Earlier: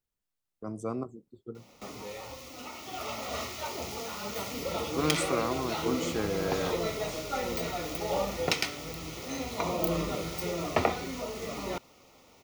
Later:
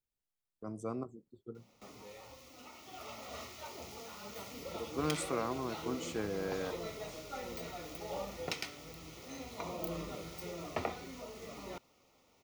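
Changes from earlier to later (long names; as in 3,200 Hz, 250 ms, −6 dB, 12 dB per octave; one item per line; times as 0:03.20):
speech −5.0 dB
background −10.5 dB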